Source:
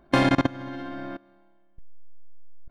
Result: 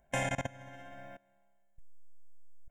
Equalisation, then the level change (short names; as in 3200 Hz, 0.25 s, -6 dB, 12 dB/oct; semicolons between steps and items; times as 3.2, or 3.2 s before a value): high shelf 4600 Hz +8.5 dB; bell 7100 Hz +14.5 dB 0.49 oct; fixed phaser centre 1200 Hz, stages 6; -9.0 dB